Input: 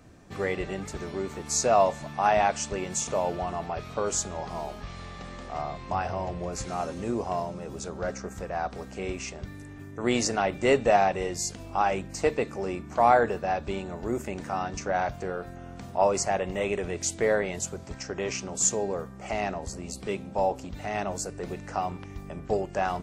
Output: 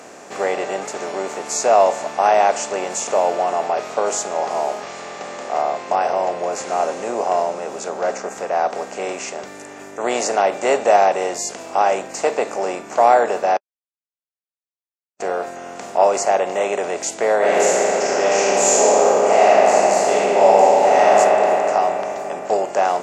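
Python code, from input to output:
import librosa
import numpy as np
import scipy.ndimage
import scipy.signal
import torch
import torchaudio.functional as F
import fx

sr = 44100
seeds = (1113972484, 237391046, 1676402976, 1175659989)

y = fx.high_shelf(x, sr, hz=8000.0, db=-7.0, at=(5.01, 9.0))
y = fx.reverb_throw(y, sr, start_s=17.37, length_s=3.74, rt60_s=2.9, drr_db=-10.0)
y = fx.edit(y, sr, fx.silence(start_s=13.57, length_s=1.63), tone=tone)
y = fx.bin_compress(y, sr, power=0.6)
y = fx.dynamic_eq(y, sr, hz=670.0, q=1.1, threshold_db=-31.0, ratio=4.0, max_db=6)
y = scipy.signal.sosfilt(scipy.signal.butter(2, 340.0, 'highpass', fs=sr, output='sos'), y)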